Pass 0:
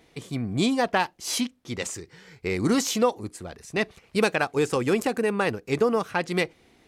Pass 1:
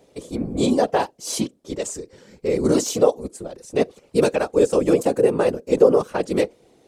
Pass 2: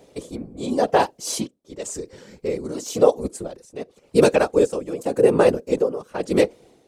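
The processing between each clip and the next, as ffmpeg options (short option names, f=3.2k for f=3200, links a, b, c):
-af "afftfilt=real='hypot(re,im)*cos(2*PI*random(0))':imag='hypot(re,im)*sin(2*PI*random(1))':win_size=512:overlap=0.75,equalizer=f=250:t=o:w=1:g=4,equalizer=f=500:t=o:w=1:g=11,equalizer=f=2k:t=o:w=1:g=-6,equalizer=f=8k:t=o:w=1:g=6,volume=4dB"
-af "tremolo=f=0.92:d=0.86,volume=4dB"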